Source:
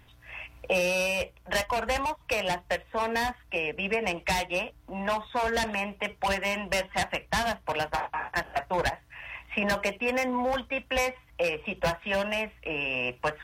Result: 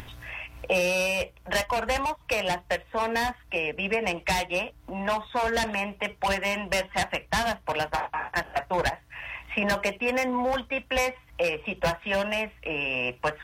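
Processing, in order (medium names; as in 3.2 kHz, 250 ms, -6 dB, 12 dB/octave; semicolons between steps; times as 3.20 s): upward compressor, threshold -34 dBFS; trim +1.5 dB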